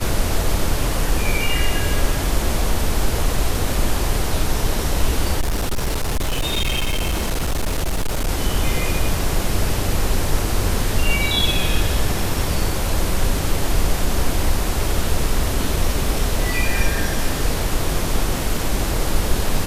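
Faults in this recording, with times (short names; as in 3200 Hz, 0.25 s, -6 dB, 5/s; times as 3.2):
5.4–8.29 clipped -16.5 dBFS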